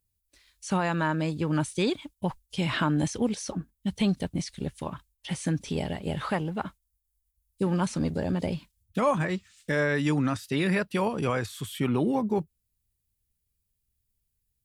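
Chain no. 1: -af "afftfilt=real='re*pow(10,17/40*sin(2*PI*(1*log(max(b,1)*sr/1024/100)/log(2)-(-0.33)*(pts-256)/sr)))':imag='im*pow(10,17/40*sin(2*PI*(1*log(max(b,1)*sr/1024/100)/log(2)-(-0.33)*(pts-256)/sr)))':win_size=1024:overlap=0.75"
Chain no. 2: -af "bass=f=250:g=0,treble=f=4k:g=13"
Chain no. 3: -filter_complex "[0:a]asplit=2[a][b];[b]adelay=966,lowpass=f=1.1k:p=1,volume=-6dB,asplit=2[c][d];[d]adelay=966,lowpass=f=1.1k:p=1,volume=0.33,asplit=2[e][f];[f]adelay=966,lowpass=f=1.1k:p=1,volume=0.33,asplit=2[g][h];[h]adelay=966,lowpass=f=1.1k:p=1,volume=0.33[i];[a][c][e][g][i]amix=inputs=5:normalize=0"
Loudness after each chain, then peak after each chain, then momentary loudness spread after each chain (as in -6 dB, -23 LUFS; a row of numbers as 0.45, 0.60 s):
-25.5, -28.0, -28.5 LUFS; -9.5, -13.0, -12.5 dBFS; 10, 9, 12 LU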